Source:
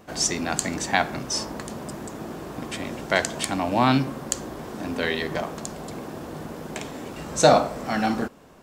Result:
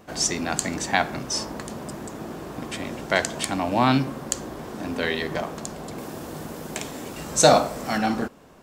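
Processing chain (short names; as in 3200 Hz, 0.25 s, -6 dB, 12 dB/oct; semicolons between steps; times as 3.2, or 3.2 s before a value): 5.98–7.98 high shelf 5100 Hz +9 dB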